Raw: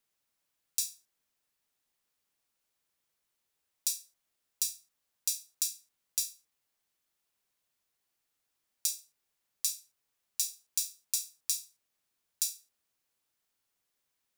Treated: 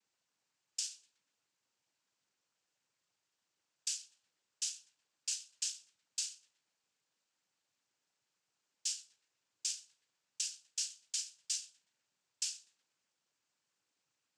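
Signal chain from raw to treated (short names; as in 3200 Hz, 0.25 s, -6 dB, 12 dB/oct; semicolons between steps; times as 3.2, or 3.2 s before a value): narrowing echo 0.123 s, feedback 73%, band-pass 1200 Hz, level -19 dB; noise vocoder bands 8; limiter -25 dBFS, peak gain reduction 7.5 dB; gain +1 dB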